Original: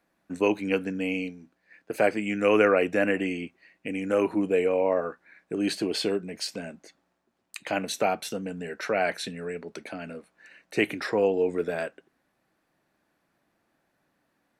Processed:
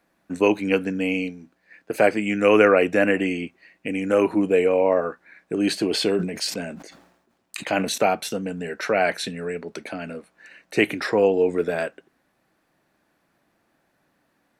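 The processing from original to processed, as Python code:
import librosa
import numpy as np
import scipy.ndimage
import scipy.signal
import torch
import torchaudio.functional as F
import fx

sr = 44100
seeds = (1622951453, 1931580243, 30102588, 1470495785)

y = fx.sustainer(x, sr, db_per_s=70.0, at=(5.84, 7.98))
y = y * librosa.db_to_amplitude(5.0)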